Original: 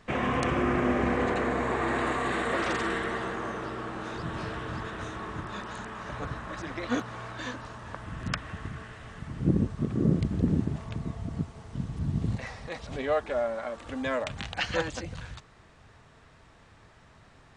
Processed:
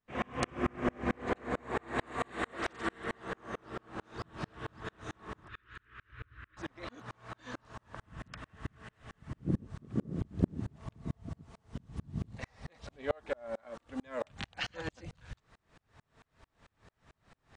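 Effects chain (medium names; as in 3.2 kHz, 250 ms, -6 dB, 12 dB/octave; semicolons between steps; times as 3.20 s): 5.48–6.57 s: FFT filter 110 Hz 0 dB, 160 Hz -22 dB, 350 Hz -9 dB, 760 Hz -29 dB, 1.4 kHz -1 dB, 2.8 kHz -2 dB, 6.3 kHz -20 dB; sawtooth tremolo in dB swelling 4.5 Hz, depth 38 dB; trim +1 dB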